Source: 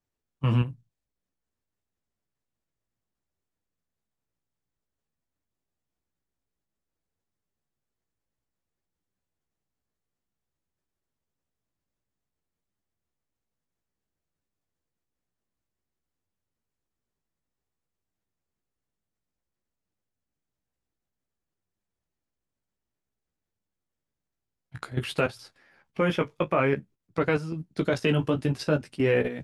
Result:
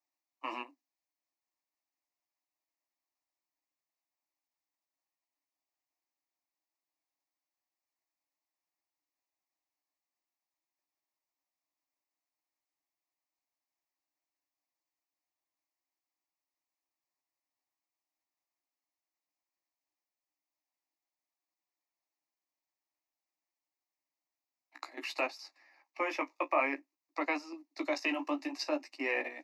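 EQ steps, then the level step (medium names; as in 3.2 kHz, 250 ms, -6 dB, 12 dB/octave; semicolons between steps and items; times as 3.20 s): steep high-pass 280 Hz 96 dB/octave; static phaser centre 2.2 kHz, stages 8; 0.0 dB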